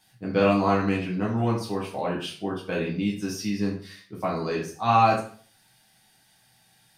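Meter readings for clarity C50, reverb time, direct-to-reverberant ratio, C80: 6.0 dB, 0.45 s, -4.5 dB, 10.5 dB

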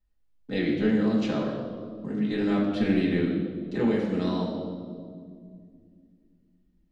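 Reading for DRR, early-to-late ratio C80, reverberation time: -5.0 dB, 5.0 dB, 2.1 s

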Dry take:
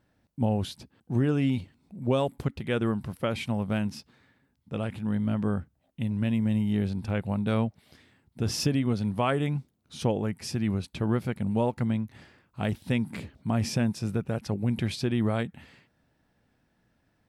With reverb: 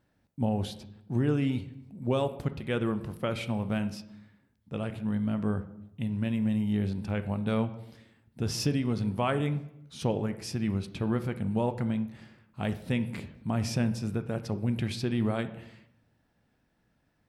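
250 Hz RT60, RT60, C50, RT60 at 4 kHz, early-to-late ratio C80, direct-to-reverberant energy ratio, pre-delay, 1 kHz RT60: 0.95 s, 0.75 s, 13.5 dB, 0.65 s, 16.5 dB, 10.0 dB, 10 ms, 0.75 s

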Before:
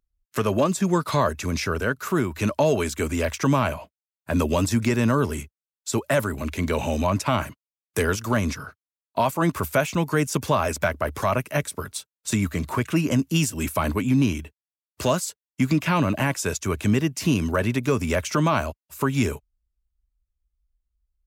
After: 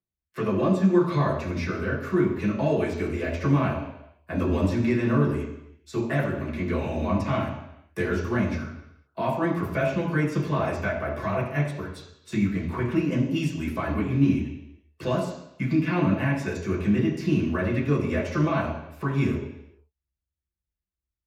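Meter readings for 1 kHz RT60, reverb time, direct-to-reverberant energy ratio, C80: 0.80 s, 0.80 s, -7.5 dB, 7.5 dB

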